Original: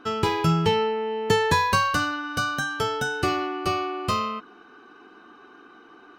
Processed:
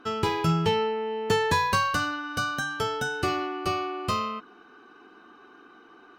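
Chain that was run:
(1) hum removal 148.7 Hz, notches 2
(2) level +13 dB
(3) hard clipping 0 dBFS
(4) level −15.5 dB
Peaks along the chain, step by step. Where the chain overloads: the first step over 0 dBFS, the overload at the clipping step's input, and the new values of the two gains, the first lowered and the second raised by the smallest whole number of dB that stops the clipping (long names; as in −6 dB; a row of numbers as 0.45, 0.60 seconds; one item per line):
−7.0, +6.0, 0.0, −15.5 dBFS
step 2, 6.0 dB
step 2 +7 dB, step 4 −9.5 dB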